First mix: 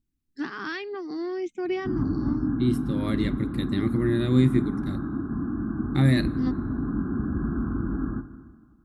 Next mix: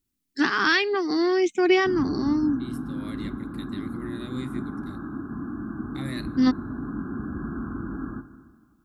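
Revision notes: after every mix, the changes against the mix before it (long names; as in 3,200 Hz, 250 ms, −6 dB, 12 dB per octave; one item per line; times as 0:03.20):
first voice +11.5 dB
second voice −10.0 dB
master: add spectral tilt +2 dB per octave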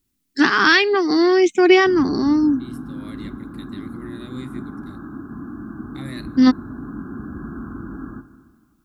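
first voice +7.0 dB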